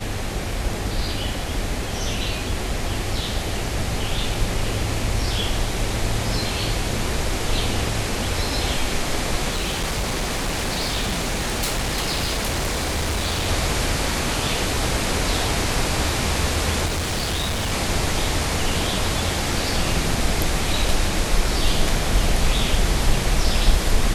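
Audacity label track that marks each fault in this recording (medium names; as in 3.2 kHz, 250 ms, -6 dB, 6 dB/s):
9.500000	13.470000	clipped -19.5 dBFS
16.850000	17.730000	clipped -20.5 dBFS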